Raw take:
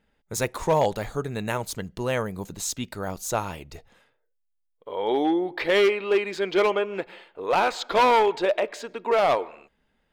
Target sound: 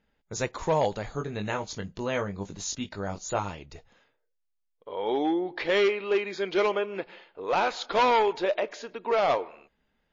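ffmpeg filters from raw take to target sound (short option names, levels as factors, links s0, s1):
-filter_complex "[0:a]asettb=1/sr,asplit=3[s0][s1][s2];[s0]atrim=end=1.144[s3];[s1]atrim=start=1.14:end=3.5,asetpts=PTS-STARTPTS,afade=t=in:d=0.004:c=qsin,afade=t=out:st=2.356:d=0.004:c=qsin,asplit=2[s4][s5];[s5]adelay=20,volume=0.501[s6];[s4][s6]amix=inputs=2:normalize=0,atrim=end_sample=104076[s7];[s2]atrim=start=3.496[s8];[s3][s7]acrossfade=d=0.004:c1=hsin:c2=qsin[s9];[s9][s8]acrossfade=d=0.004:c1=qsin:c2=hsin,volume=0.708" -ar 16000 -c:a libmp3lame -b:a 32k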